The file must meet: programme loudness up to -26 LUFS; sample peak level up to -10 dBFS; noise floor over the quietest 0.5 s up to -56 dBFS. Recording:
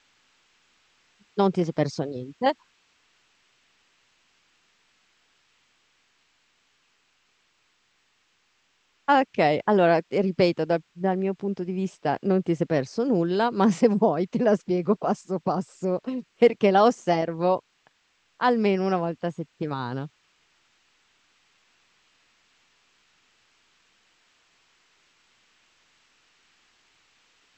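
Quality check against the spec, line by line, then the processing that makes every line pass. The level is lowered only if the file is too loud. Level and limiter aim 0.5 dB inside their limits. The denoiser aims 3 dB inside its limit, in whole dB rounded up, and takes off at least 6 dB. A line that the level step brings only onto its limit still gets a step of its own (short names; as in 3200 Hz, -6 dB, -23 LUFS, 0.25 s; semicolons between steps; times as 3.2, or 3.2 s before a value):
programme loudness -24.5 LUFS: fail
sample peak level -6.5 dBFS: fail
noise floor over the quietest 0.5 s -68 dBFS: OK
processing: gain -2 dB; limiter -10.5 dBFS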